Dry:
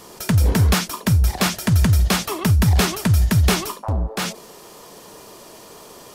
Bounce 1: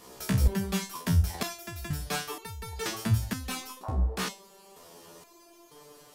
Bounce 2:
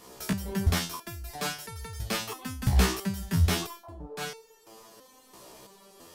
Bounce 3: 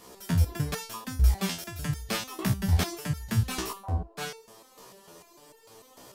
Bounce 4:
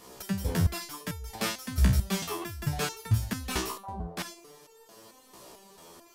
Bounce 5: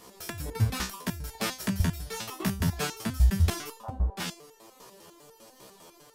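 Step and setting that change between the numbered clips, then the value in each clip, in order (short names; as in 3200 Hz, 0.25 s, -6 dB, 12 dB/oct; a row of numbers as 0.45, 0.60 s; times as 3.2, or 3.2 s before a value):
stepped resonator, rate: 2.1, 3, 6.7, 4.5, 10 Hz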